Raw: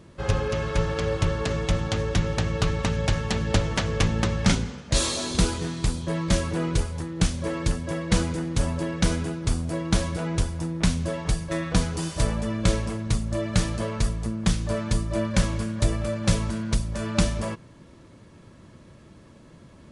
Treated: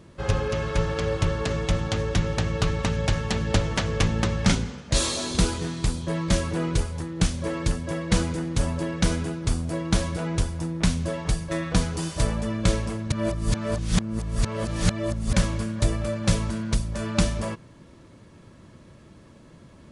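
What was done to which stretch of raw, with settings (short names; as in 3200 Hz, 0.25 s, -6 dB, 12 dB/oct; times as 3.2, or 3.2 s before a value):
13.12–15.33 reverse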